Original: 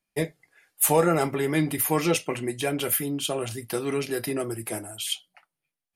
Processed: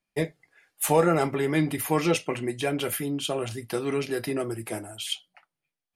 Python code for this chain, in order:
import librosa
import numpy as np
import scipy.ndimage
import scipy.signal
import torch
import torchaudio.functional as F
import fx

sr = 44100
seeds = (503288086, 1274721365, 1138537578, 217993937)

y = fx.high_shelf(x, sr, hz=9700.0, db=-12.0)